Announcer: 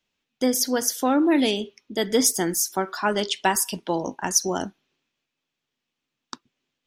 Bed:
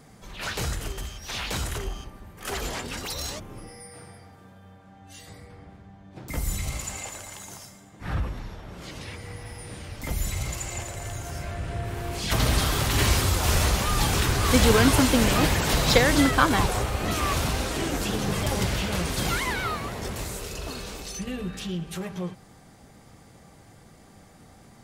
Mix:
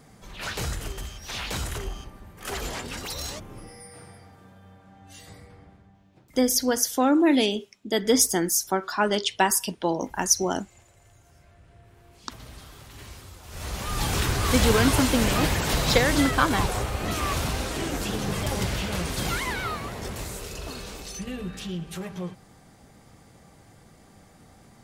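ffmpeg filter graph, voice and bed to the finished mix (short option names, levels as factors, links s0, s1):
-filter_complex "[0:a]adelay=5950,volume=1[s0];[1:a]volume=9.44,afade=t=out:st=5.32:d=1:silence=0.0891251,afade=t=in:st=13.5:d=0.68:silence=0.0944061[s1];[s0][s1]amix=inputs=2:normalize=0"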